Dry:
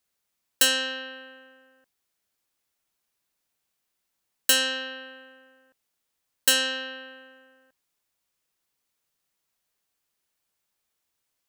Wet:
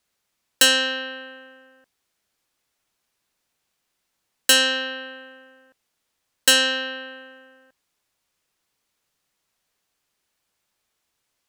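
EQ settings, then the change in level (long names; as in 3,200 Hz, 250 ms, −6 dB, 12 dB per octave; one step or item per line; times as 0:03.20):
high-shelf EQ 11,000 Hz −9.5 dB
+6.5 dB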